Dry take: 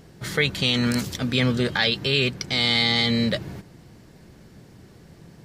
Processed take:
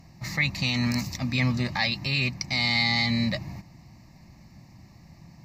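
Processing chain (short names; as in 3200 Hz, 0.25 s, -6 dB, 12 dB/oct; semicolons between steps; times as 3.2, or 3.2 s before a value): added harmonics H 4 -37 dB, 6 -42 dB, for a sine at -6.5 dBFS; fixed phaser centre 2200 Hz, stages 8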